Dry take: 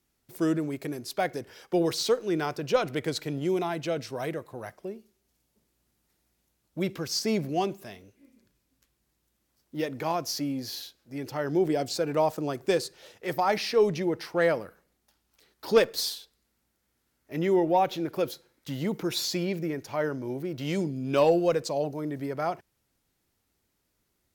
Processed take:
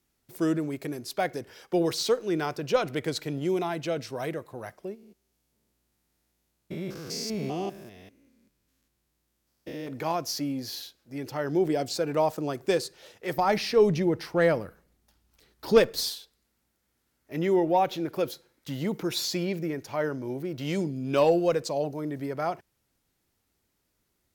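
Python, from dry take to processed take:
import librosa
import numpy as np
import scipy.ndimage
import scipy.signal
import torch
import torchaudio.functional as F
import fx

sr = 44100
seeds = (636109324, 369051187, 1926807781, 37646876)

y = fx.spec_steps(x, sr, hold_ms=200, at=(4.94, 9.87), fade=0.02)
y = fx.low_shelf(y, sr, hz=190.0, db=10.5, at=(13.38, 16.11))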